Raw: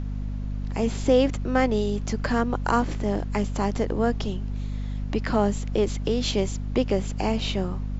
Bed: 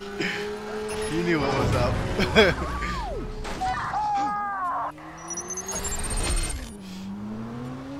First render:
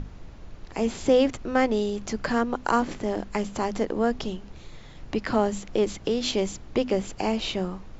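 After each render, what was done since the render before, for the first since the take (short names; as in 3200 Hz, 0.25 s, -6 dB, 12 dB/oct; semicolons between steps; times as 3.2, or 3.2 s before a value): notches 50/100/150/200/250 Hz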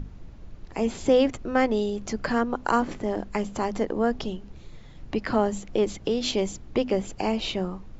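denoiser 6 dB, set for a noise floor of -45 dBFS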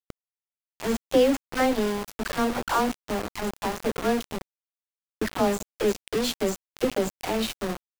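dispersion lows, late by 87 ms, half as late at 640 Hz; sample gate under -26 dBFS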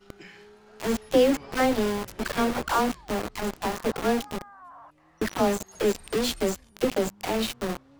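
add bed -19.5 dB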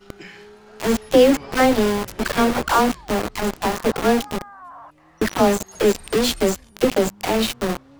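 gain +7 dB; limiter -3 dBFS, peak gain reduction 1 dB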